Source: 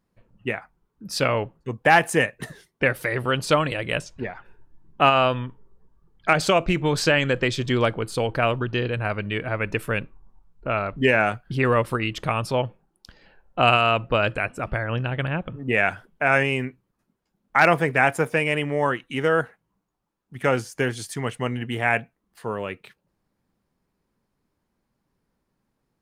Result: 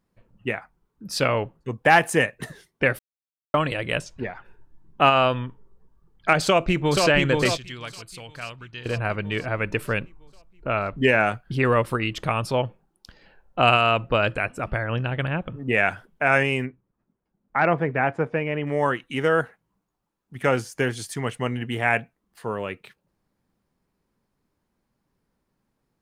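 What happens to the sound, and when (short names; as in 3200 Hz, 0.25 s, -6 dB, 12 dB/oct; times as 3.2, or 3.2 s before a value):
2.99–3.54 mute
6.43–7.05 echo throw 0.48 s, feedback 55%, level -3.5 dB
7.57–8.86 passive tone stack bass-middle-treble 5-5-5
16.66–18.67 tape spacing loss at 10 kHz 35 dB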